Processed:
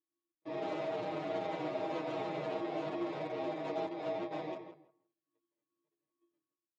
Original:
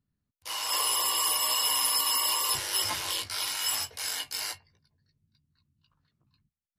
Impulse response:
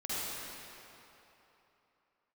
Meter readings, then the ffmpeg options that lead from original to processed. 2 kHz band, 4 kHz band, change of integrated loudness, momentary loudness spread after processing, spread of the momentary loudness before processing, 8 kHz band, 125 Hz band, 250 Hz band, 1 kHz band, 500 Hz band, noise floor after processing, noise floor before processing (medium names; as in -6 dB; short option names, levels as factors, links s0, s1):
-11.5 dB, -25.0 dB, -12.0 dB, 6 LU, 10 LU, under -40 dB, +3.0 dB, +13.5 dB, -6.5 dB, +10.0 dB, under -85 dBFS, under -85 dBFS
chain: -filter_complex "[0:a]bandreject=f=50:t=h:w=6,bandreject=f=100:t=h:w=6,bandreject=f=150:t=h:w=6,bandreject=f=200:t=h:w=6,bandreject=f=250:t=h:w=6,bandreject=f=300:t=h:w=6,bandreject=f=350:t=h:w=6,bandreject=f=400:t=h:w=6,agate=range=0.1:threshold=0.00112:ratio=16:detection=peak,lowshelf=f=520:t=q:w=1.5:g=11.5,afftfilt=real='hypot(re,im)*cos(PI*b)':imag='0':win_size=512:overlap=0.75,alimiter=limit=0.0708:level=0:latency=1:release=10,aresample=16000,acrusher=samples=11:mix=1:aa=0.000001,aresample=44100,aeval=exprs='(mod(84.1*val(0)+1,2)-1)/84.1':c=same,highpass=f=150:w=0.5412,highpass=f=150:w=1.3066,equalizer=f=190:t=q:w=4:g=-4,equalizer=f=360:t=q:w=4:g=9,equalizer=f=640:t=q:w=4:g=9,lowpass=f=3700:w=0.5412,lowpass=f=3700:w=1.3066,aecho=1:1:6.4:0.89,asplit=2[s0][s1];[s1]adelay=164,lowpass=f=2300:p=1,volume=0.398,asplit=2[s2][s3];[s3]adelay=164,lowpass=f=2300:p=1,volume=0.17,asplit=2[s4][s5];[s5]adelay=164,lowpass=f=2300:p=1,volume=0.17[s6];[s2][s4][s6]amix=inputs=3:normalize=0[s7];[s0][s7]amix=inputs=2:normalize=0,asplit=2[s8][s9];[s9]adelay=9.9,afreqshift=-2.5[s10];[s8][s10]amix=inputs=2:normalize=1,volume=1.58"